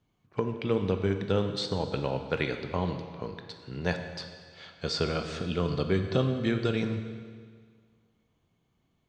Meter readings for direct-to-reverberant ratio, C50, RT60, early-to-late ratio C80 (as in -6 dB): 6.0 dB, 7.5 dB, 1.8 s, 9.0 dB